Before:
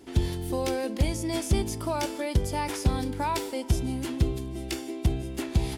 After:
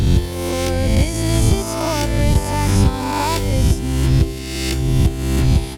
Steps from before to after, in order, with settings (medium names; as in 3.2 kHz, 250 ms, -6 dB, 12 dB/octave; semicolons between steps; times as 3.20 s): reverse spectral sustain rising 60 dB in 1.76 s; transient shaper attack +1 dB, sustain -3 dB; trim +5.5 dB